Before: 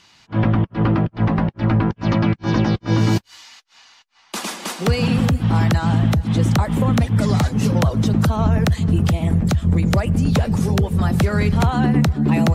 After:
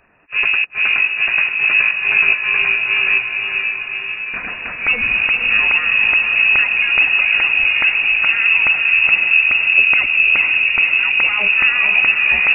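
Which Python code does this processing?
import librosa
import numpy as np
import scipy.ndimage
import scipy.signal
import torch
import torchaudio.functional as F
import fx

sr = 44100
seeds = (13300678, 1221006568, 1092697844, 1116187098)

y = fx.freq_invert(x, sr, carrier_hz=2700)
y = fx.echo_diffused(y, sr, ms=511, feedback_pct=64, wet_db=-4.5)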